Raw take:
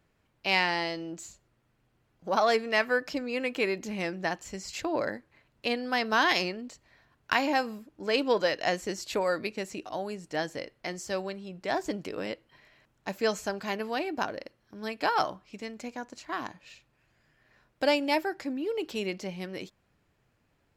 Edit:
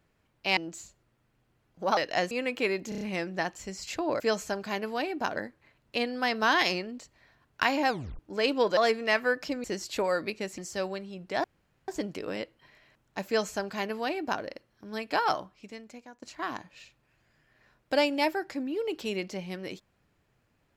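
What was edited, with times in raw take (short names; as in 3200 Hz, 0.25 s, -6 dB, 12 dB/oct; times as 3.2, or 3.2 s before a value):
0.57–1.02 cut
2.42–3.29 swap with 8.47–8.81
3.87 stutter 0.03 s, 5 plays
7.59 tape stop 0.30 s
9.75–10.92 cut
11.78 insert room tone 0.44 s
13.17–14.33 copy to 5.06
15.13–16.12 fade out, to -14.5 dB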